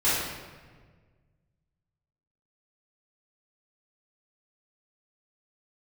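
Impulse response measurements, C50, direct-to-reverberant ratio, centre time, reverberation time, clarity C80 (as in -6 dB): -1.5 dB, -13.0 dB, 92 ms, 1.5 s, 2.0 dB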